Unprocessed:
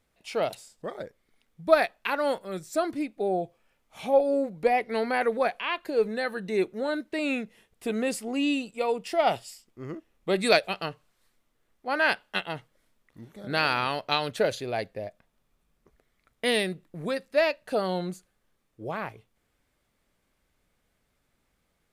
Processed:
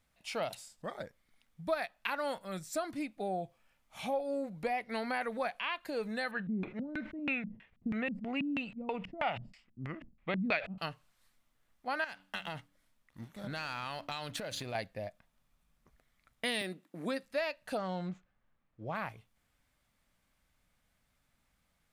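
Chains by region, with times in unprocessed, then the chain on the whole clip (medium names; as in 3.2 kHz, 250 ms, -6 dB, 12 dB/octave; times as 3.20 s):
6.31–10.78 s: LFO low-pass square 3.1 Hz 210–2300 Hz + decay stretcher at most 150 dB/s
12.04–14.75 s: de-hum 95.61 Hz, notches 3 + waveshaping leveller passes 1 + compression 16:1, threshold -31 dBFS
16.61–17.23 s: resonant high-pass 290 Hz, resonance Q 2.4 + de-esser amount 70%
17.77–18.95 s: median filter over 9 samples + distance through air 150 m
whole clip: peaking EQ 400 Hz -10.5 dB 0.77 oct; compression 3:1, threshold -31 dBFS; trim -1.5 dB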